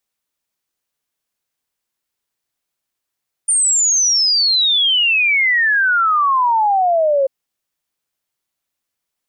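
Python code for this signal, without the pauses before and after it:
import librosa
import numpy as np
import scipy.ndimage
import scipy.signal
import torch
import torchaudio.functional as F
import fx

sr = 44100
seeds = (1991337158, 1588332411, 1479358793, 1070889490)

y = fx.ess(sr, length_s=3.79, from_hz=9100.0, to_hz=530.0, level_db=-11.5)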